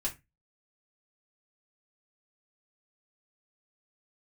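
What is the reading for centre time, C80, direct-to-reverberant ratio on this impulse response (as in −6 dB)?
12 ms, 23.5 dB, −3.5 dB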